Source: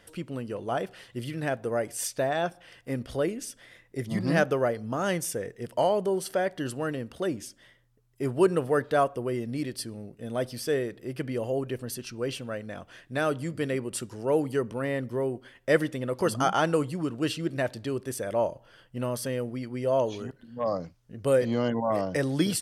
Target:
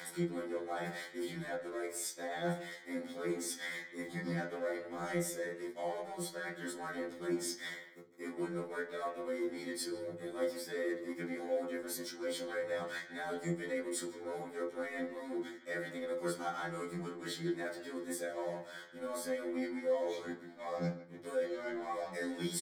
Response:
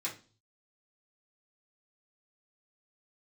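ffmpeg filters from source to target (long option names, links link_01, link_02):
-filter_complex "[0:a]highpass=230,asplit=2[link_01][link_02];[link_02]acompressor=mode=upward:threshold=-28dB:ratio=2.5,volume=1dB[link_03];[link_01][link_03]amix=inputs=2:normalize=0,alimiter=limit=-12.5dB:level=0:latency=1:release=276,areverse,acompressor=threshold=-38dB:ratio=5,areverse,aeval=exprs='sgn(val(0))*max(abs(val(0))-0.00266,0)':channel_layout=same,asuperstop=centerf=2700:order=4:qfactor=4,asplit=2[link_04][link_05];[link_05]adelay=150,highpass=300,lowpass=3400,asoftclip=type=hard:threshold=-35.5dB,volume=-12dB[link_06];[link_04][link_06]amix=inputs=2:normalize=0[link_07];[1:a]atrim=start_sample=2205[link_08];[link_07][link_08]afir=irnorm=-1:irlink=0,afftfilt=real='re*2*eq(mod(b,4),0)':imag='im*2*eq(mod(b,4),0)':win_size=2048:overlap=0.75,volume=3dB"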